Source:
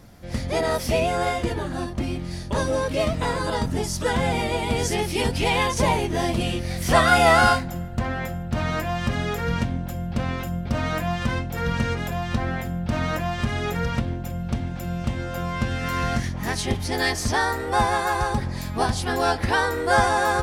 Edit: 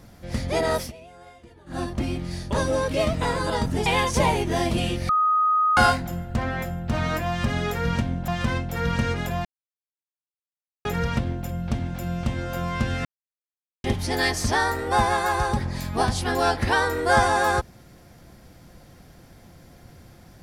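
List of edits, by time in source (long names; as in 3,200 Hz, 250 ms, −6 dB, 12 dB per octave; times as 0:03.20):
0:00.80–0:01.78: duck −23.5 dB, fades 0.12 s
0:03.86–0:05.49: remove
0:06.72–0:07.40: beep over 1,250 Hz −17 dBFS
0:09.91–0:11.09: remove
0:12.26–0:13.66: silence
0:15.86–0:16.65: silence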